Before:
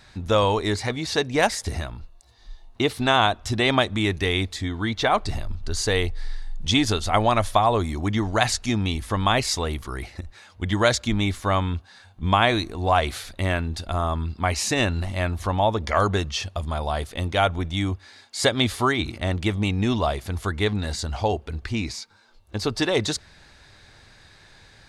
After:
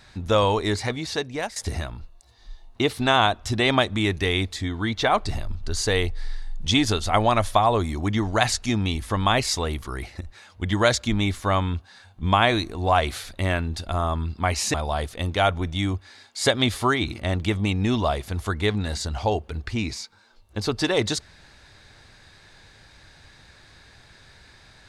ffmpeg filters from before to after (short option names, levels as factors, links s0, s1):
-filter_complex "[0:a]asplit=3[s0][s1][s2];[s0]atrim=end=1.56,asetpts=PTS-STARTPTS,afade=t=out:st=0.86:d=0.7:silence=0.188365[s3];[s1]atrim=start=1.56:end=14.742,asetpts=PTS-STARTPTS,afade=t=in:d=0.004:c=hsin:silence=0.188365[s4];[s2]atrim=start=16.718[s5];[s3][s4]concat=n=2:v=0:a=1[s6];[s6][s5]acrossfade=d=0.004:c1=hsin:c2=hsin"